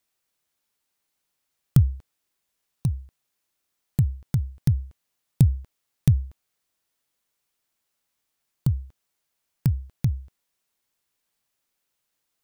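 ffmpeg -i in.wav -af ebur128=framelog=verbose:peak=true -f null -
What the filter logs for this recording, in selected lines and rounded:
Integrated loudness:
  I:         -25.8 LUFS
  Threshold: -36.9 LUFS
Loudness range:
  LRA:         7.0 LU
  Threshold: -49.6 LUFS
  LRA low:   -33.5 LUFS
  LRA high:  -26.5 LUFS
True peak:
  Peak:       -4.2 dBFS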